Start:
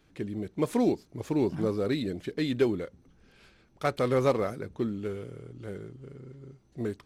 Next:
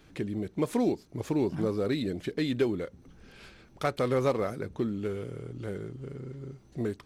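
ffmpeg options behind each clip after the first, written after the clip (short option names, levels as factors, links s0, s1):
-af "acompressor=threshold=0.00501:ratio=1.5,volume=2.24"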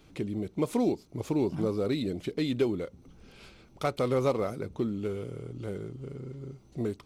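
-af "equalizer=f=1700:t=o:w=0.3:g=-9.5"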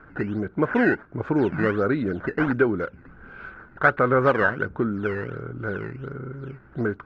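-af "acrusher=samples=11:mix=1:aa=0.000001:lfo=1:lforange=17.6:lforate=1.4,lowpass=f=1500:t=q:w=10,volume=1.88"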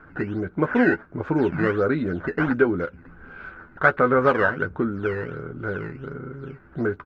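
-filter_complex "[0:a]asplit=2[s0][s1];[s1]adelay=12,volume=0.398[s2];[s0][s2]amix=inputs=2:normalize=0"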